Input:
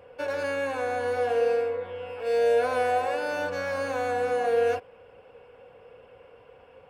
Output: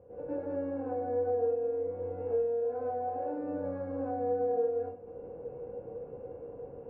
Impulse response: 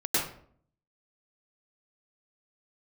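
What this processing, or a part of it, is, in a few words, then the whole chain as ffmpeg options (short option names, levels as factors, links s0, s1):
television next door: -filter_complex "[0:a]acompressor=threshold=0.0112:ratio=5,lowpass=440[s0];[1:a]atrim=start_sample=2205[s1];[s0][s1]afir=irnorm=-1:irlink=0"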